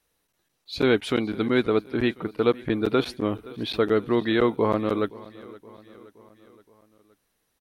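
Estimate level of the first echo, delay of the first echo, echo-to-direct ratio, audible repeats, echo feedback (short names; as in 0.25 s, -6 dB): -20.5 dB, 0.521 s, -19.0 dB, 3, 56%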